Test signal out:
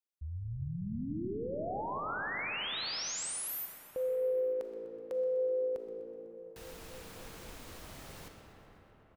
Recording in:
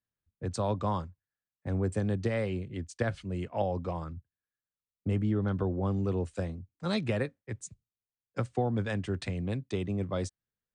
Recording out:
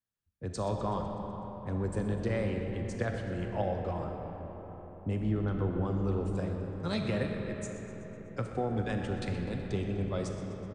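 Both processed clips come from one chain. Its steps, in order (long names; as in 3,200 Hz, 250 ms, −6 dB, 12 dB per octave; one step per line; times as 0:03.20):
on a send: echo with shifted repeats 125 ms, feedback 62%, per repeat −56 Hz, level −15 dB
on the sum: comb and all-pass reverb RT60 5 s, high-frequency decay 0.45×, pre-delay 0 ms, DRR 2.5 dB
level −3 dB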